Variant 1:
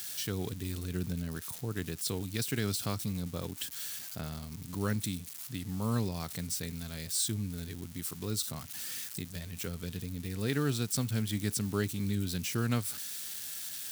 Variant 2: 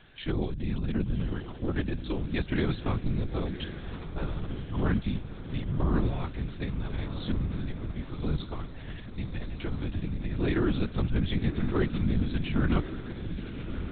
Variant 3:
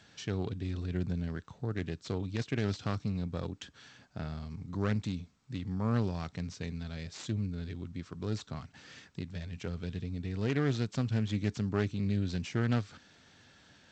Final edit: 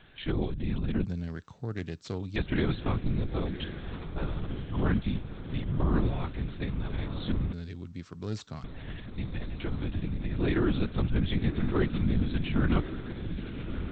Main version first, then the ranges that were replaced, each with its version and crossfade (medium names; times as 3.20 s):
2
1.05–2.36 s: from 3
7.53–8.64 s: from 3
not used: 1